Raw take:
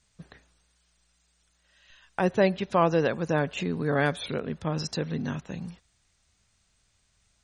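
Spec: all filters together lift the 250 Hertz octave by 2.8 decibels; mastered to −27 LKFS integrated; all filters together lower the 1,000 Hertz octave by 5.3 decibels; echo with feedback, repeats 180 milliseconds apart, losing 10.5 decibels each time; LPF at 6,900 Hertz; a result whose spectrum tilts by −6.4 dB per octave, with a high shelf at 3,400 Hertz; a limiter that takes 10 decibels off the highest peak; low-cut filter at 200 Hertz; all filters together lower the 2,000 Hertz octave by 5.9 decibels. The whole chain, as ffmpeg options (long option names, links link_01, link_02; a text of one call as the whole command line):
ffmpeg -i in.wav -af "highpass=200,lowpass=6900,equalizer=frequency=250:width_type=o:gain=7.5,equalizer=frequency=1000:width_type=o:gain=-6.5,equalizer=frequency=2000:width_type=o:gain=-3.5,highshelf=frequency=3400:gain=-6.5,alimiter=limit=-20.5dB:level=0:latency=1,aecho=1:1:180|360|540:0.299|0.0896|0.0269,volume=4.5dB" out.wav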